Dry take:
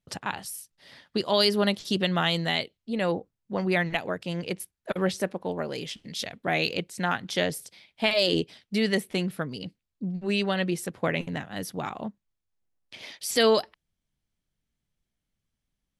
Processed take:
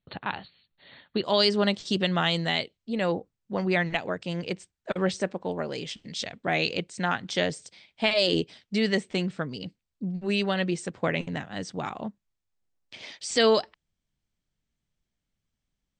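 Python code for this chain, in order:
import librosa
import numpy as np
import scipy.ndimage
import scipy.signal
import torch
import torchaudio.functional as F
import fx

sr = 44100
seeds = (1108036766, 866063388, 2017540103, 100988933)

y = fx.brickwall_lowpass(x, sr, high_hz=fx.steps((0.0, 4500.0), (1.23, 8800.0)))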